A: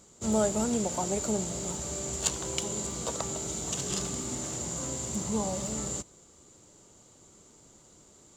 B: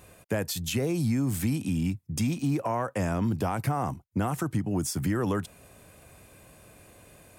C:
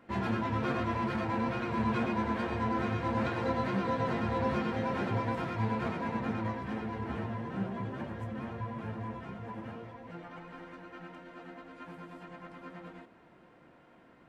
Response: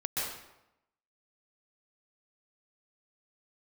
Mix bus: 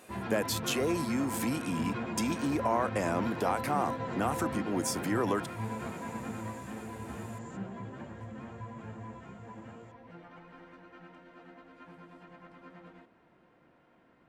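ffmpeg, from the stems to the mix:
-filter_complex "[0:a]acompressor=threshold=-38dB:ratio=6,adelay=1550,volume=-16dB[link_01];[1:a]highpass=290,volume=0.5dB,asplit=2[link_02][link_03];[2:a]volume=-5dB[link_04];[link_03]apad=whole_len=437326[link_05];[link_01][link_05]sidechaincompress=threshold=-48dB:ratio=8:attack=16:release=241[link_06];[link_06][link_02][link_04]amix=inputs=3:normalize=0,highshelf=frequency=11000:gain=-6.5"

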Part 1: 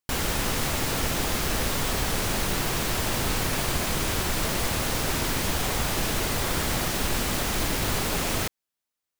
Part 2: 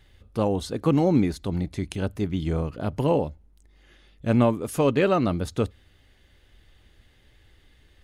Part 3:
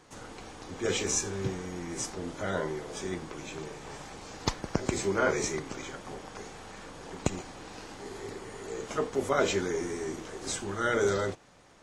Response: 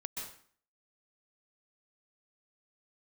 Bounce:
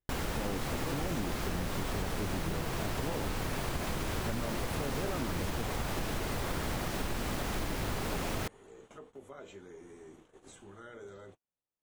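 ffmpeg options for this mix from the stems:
-filter_complex "[0:a]volume=-3dB[link_01];[1:a]alimiter=limit=-18.5dB:level=0:latency=1,volume=-6.5dB[link_02];[2:a]acompressor=threshold=-34dB:ratio=2.5,aexciter=amount=1.3:drive=3.6:freq=2700,volume=-14dB[link_03];[link_01][link_02][link_03]amix=inputs=3:normalize=0,agate=range=-28dB:threshold=-54dB:ratio=16:detection=peak,highshelf=frequency=2500:gain=-8.5,acompressor=threshold=-30dB:ratio=6"

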